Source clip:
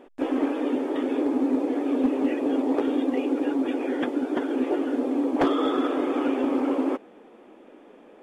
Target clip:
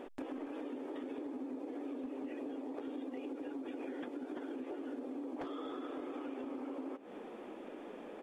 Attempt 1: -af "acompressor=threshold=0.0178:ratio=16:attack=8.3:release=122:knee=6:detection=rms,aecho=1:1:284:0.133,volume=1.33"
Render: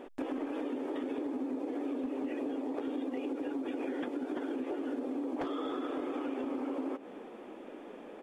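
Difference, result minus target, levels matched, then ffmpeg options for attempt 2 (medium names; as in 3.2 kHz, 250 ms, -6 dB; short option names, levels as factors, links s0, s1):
compression: peak gain reduction -6.5 dB
-af "acompressor=threshold=0.00794:ratio=16:attack=8.3:release=122:knee=6:detection=rms,aecho=1:1:284:0.133,volume=1.33"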